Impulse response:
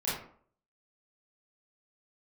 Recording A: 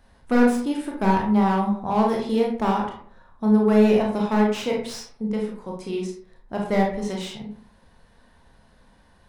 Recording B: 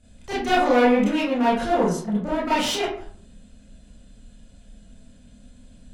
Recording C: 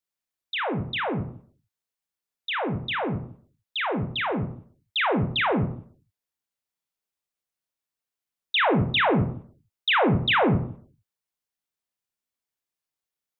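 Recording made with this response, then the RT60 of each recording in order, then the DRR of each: B; 0.55, 0.55, 0.55 s; -1.0, -10.0, 5.0 dB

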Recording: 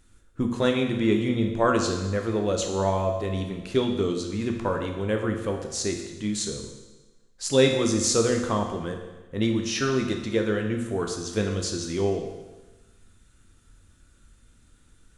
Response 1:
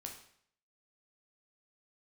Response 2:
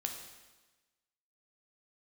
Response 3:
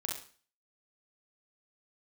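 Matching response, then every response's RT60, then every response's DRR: 2; 0.65, 1.2, 0.40 s; 1.5, 3.0, -1.5 dB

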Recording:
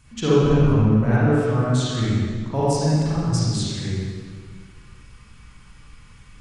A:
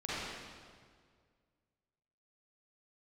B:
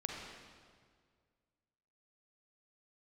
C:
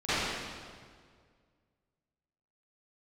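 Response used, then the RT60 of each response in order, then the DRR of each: A; 1.9, 1.9, 1.9 s; -10.5, -0.5, -20.5 dB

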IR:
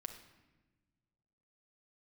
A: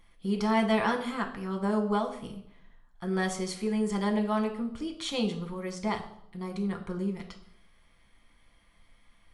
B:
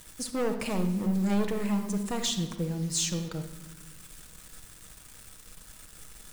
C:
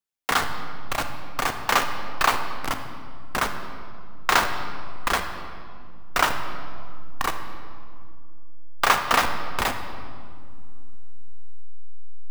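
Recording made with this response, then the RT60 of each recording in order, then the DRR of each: B; 0.75, 1.2, 2.2 s; 2.5, 4.5, 6.0 dB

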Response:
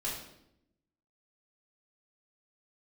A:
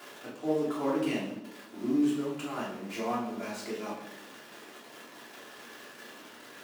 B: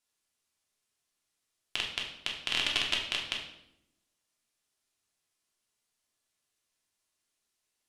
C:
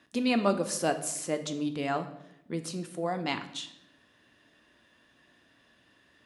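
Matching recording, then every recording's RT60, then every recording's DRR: A; 0.80, 0.80, 0.80 s; -8.0, -2.0, 7.5 dB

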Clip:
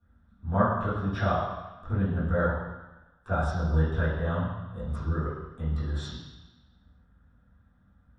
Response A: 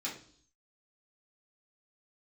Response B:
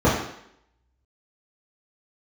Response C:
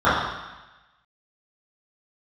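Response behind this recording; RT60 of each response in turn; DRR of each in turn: C; 0.55, 0.70, 1.1 s; -6.5, -11.0, -14.0 dB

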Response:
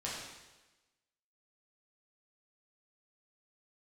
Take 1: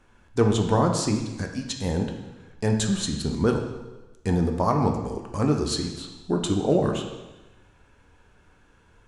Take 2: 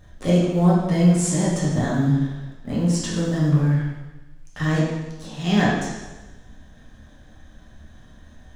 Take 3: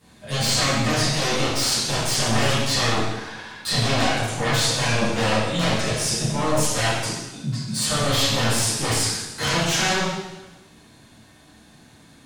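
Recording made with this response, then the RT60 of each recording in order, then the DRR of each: 2; 1.1, 1.1, 1.1 s; 2.5, -7.0, -14.0 dB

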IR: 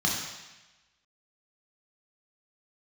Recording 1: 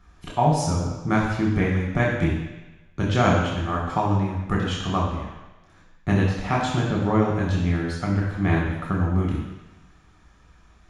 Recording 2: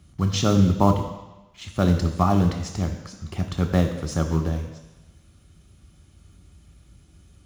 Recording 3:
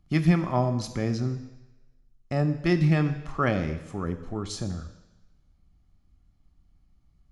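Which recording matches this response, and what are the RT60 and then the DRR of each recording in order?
1; 1.1, 1.1, 1.1 s; -3.0, 6.0, 10.0 dB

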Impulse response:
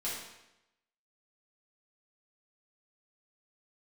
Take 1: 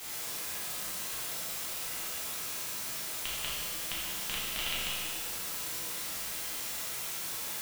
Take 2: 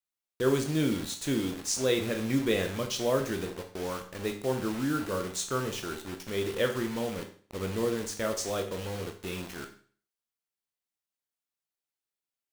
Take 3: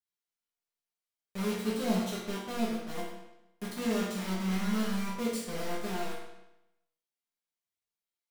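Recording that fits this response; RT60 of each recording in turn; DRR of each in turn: 3; 1.7, 0.45, 0.90 s; -8.0, 4.0, -8.5 dB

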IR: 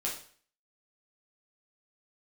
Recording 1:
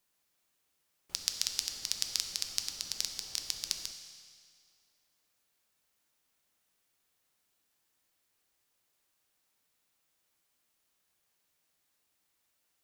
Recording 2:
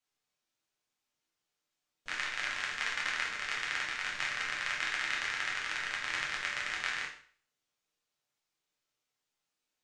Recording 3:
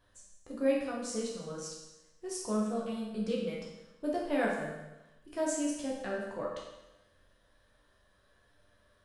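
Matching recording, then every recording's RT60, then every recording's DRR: 2; 2.1, 0.50, 1.0 s; 5.0, -3.5, -4.0 dB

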